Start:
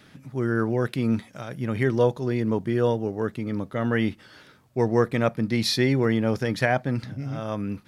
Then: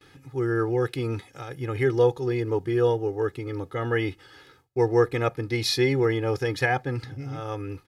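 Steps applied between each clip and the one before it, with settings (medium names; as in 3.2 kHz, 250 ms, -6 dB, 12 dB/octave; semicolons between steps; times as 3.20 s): gate with hold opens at -45 dBFS; comb 2.4 ms, depth 93%; trim -3 dB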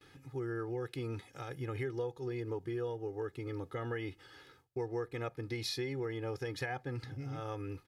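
compression 4:1, threshold -30 dBFS, peak gain reduction 13 dB; trim -6 dB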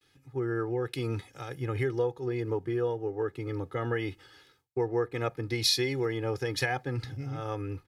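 three bands expanded up and down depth 70%; trim +7.5 dB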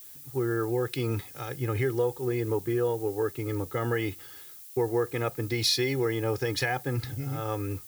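in parallel at 0 dB: peak limiter -22.5 dBFS, peak gain reduction 8.5 dB; on the sum: added noise violet -44 dBFS; trim -3 dB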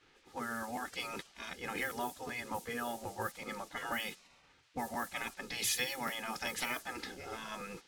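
spectral gate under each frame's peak -15 dB weak; level-controlled noise filter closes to 2 kHz, open at -34.5 dBFS; crackling interface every 0.38 s, samples 512, repeat, from 0.37 s; trim +2 dB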